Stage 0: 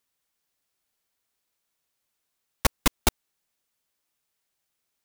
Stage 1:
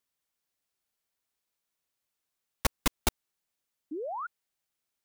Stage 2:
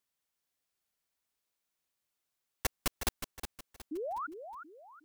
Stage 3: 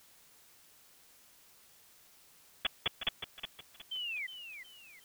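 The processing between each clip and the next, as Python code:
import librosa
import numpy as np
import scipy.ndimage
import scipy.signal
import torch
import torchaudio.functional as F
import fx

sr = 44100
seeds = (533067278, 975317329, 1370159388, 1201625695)

y1 = fx.spec_paint(x, sr, seeds[0], shape='rise', start_s=3.91, length_s=0.36, low_hz=280.0, high_hz=1500.0, level_db=-30.0)
y1 = F.gain(torch.from_numpy(y1), -5.5).numpy()
y2 = 10.0 ** (-20.5 / 20.0) * (np.abs((y1 / 10.0 ** (-20.5 / 20.0) + 3.0) % 4.0 - 2.0) - 1.0)
y2 = fx.echo_feedback(y2, sr, ms=365, feedback_pct=35, wet_db=-9.0)
y2 = F.gain(torch.from_numpy(y2), -1.5).numpy()
y3 = fx.freq_invert(y2, sr, carrier_hz=3400)
y3 = fx.quant_dither(y3, sr, seeds[1], bits=10, dither='triangular')
y3 = F.gain(torch.from_numpy(y3), -1.5).numpy()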